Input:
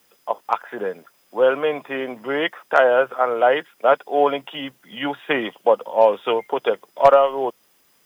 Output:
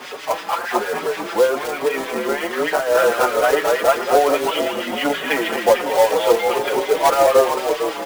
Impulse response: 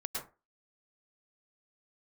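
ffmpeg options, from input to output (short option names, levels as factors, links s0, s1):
-filter_complex "[0:a]aeval=exprs='val(0)+0.5*0.0841*sgn(val(0))':c=same,asplit=2[s0][s1];[s1]asplit=7[s2][s3][s4][s5][s6][s7][s8];[s2]adelay=223,afreqshift=-31,volume=0.631[s9];[s3]adelay=446,afreqshift=-62,volume=0.339[s10];[s4]adelay=669,afreqshift=-93,volume=0.184[s11];[s5]adelay=892,afreqshift=-124,volume=0.0989[s12];[s6]adelay=1115,afreqshift=-155,volume=0.0537[s13];[s7]adelay=1338,afreqshift=-186,volume=0.0288[s14];[s8]adelay=1561,afreqshift=-217,volume=0.0157[s15];[s9][s10][s11][s12][s13][s14][s15]amix=inputs=7:normalize=0[s16];[s0][s16]amix=inputs=2:normalize=0,asettb=1/sr,asplit=3[s17][s18][s19];[s17]atrim=end=1.464[s20];[s18]atrim=start=1.46:end=2.95,asetpts=PTS-STARTPTS,afade=t=in:d=0.004:c=qsin,afade=t=out:st=1.486:d=0.004:c=qsin,acompressor=threshold=0.158:ratio=6[s21];[s19]atrim=start=2.946[s22];[s20][s21]acrossfade=d=0.004:c1=hsin:c2=qsin[s23];[s23][s22]acrossfade=d=0.004:c1=qsin:c2=hsin,acrossover=split=1400[s24][s25];[s24]aeval=exprs='val(0)*(1-0.7/2+0.7/2*cos(2*PI*6.5*n/s))':c=same[s26];[s25]aeval=exprs='val(0)*(1-0.7/2-0.7/2*cos(2*PI*6.5*n/s))':c=same[s27];[s26][s27]amix=inputs=2:normalize=0,asplit=2[s28][s29];[s29]aecho=0:1:790|1580|2370|3160:0.141|0.0664|0.0312|0.0147[s30];[s28][s30]amix=inputs=2:normalize=0,acontrast=59,highpass=290,lowpass=3100,acrusher=bits=3:mode=log:mix=0:aa=0.000001,asplit=2[s31][s32];[s32]adelay=5.1,afreqshift=1.2[s33];[s31][s33]amix=inputs=2:normalize=1"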